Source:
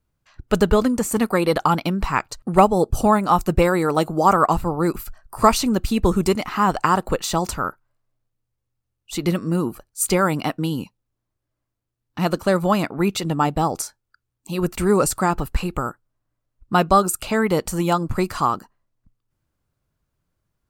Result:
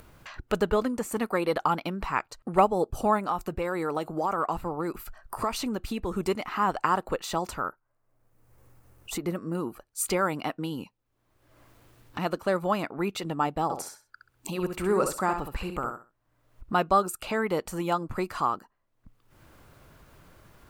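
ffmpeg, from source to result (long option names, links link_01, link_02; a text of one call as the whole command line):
ffmpeg -i in.wav -filter_complex "[0:a]asettb=1/sr,asplit=3[link_01][link_02][link_03];[link_01]atrim=end=3.284[link_04];[link_02]atrim=start=3.28:end=6.14,asetpts=PTS-STARTPTS,afade=type=in:duration=0.004:curve=qsin,afade=type=out:start_time=2.856:duration=0.004:curve=qsin,acompressor=threshold=-16dB:ratio=6:attack=3.2:release=140:knee=1:detection=peak[link_05];[link_03]atrim=start=6.136[link_06];[link_04][link_05]acrossfade=duration=0.004:curve1=hsin:curve2=qsin[link_07];[link_07][link_06]acrossfade=duration=0.004:curve1=qsin:curve2=hsin,asettb=1/sr,asplit=3[link_08][link_09][link_10];[link_08]atrim=end=7.684[link_11];[link_09]atrim=start=7.68:end=9.55,asetpts=PTS-STARTPTS,afade=type=in:duration=0.004:curve=qsin,afade=type=out:start_time=1.866:duration=0.004:curve=qsin,equalizer=frequency=3400:width_type=o:width=1.4:gain=-10[link_12];[link_10]atrim=start=9.546[link_13];[link_11][link_12]acrossfade=duration=0.004:curve1=hsin:curve2=qsin[link_14];[link_14][link_13]acrossfade=duration=0.004:curve1=qsin:curve2=hsin,asettb=1/sr,asplit=3[link_15][link_16][link_17];[link_15]atrim=end=13.634[link_18];[link_16]atrim=start=13.63:end=16.73,asetpts=PTS-STARTPTS,afade=type=in:duration=0.004:curve=qsin,afade=type=out:start_time=3.096:duration=0.004:curve=qsin,aecho=1:1:66|132|198:0.447|0.0804|0.0145,atrim=end_sample=136710[link_19];[link_17]atrim=start=16.726[link_20];[link_18][link_19]acrossfade=duration=0.004:curve1=hsin:curve2=qsin[link_21];[link_21][link_20]acrossfade=duration=0.004:curve1=qsin:curve2=hsin,bass=frequency=250:gain=-7,treble=frequency=4000:gain=-12,acompressor=mode=upward:threshold=-22dB:ratio=2.5,highshelf=frequency=6000:gain=8,volume=-6.5dB" out.wav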